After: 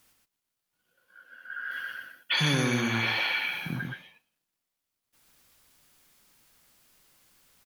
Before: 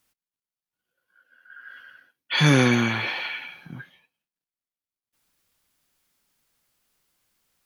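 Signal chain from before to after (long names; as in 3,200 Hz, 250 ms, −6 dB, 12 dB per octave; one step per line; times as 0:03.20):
downward compressor 4 to 1, threshold −36 dBFS, peak gain reduction 18.5 dB
0:01.71–0:03.76: high-shelf EQ 7,400 Hz +11 dB
single-tap delay 123 ms −4 dB
level +7.5 dB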